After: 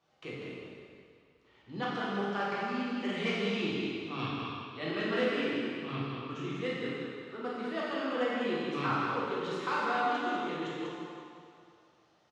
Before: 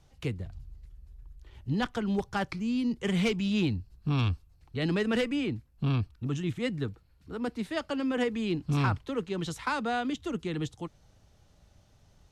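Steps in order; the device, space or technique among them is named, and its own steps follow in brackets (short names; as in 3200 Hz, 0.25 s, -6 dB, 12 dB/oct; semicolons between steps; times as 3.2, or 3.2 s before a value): station announcement (BPF 310–4400 Hz; bell 1200 Hz +6 dB 0.24 oct; loudspeakers at several distances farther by 17 m -10 dB, 67 m -6 dB; reverb RT60 2.3 s, pre-delay 5 ms, DRR -6.5 dB); gain -8 dB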